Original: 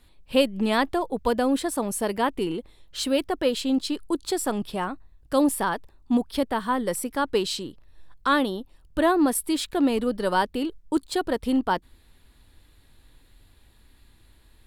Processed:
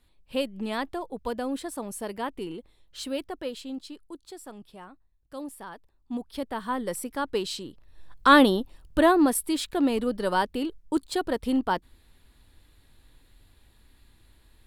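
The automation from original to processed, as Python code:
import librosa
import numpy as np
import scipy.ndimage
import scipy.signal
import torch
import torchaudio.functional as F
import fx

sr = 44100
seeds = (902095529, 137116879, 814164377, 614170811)

y = fx.gain(x, sr, db=fx.line((3.16, -8.0), (4.26, -17.0), (5.58, -17.0), (6.73, -4.5), (7.64, -4.5), (8.43, 7.0), (9.48, -2.0)))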